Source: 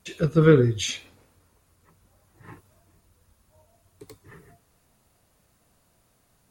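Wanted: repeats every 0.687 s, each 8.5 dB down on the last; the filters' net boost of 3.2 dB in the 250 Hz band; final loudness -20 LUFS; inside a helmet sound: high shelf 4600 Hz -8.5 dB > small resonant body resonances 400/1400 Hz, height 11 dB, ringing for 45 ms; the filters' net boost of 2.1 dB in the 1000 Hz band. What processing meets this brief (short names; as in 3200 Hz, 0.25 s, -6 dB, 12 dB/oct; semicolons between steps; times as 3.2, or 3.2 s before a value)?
bell 250 Hz +5 dB; bell 1000 Hz +4 dB; high shelf 4600 Hz -8.5 dB; feedback echo 0.687 s, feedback 38%, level -8.5 dB; small resonant body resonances 400/1400 Hz, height 11 dB, ringing for 45 ms; gain -2.5 dB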